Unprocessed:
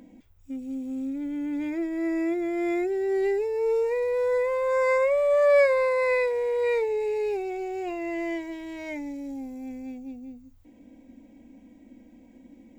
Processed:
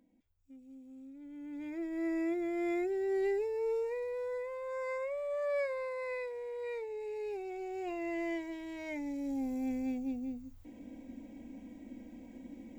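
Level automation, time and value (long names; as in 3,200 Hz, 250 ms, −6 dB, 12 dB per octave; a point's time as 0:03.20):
0:01.13 −19.5 dB
0:01.99 −7 dB
0:03.42 −7 dB
0:04.50 −15 dB
0:06.84 −15 dB
0:07.99 −6 dB
0:08.90 −6 dB
0:09.53 +2 dB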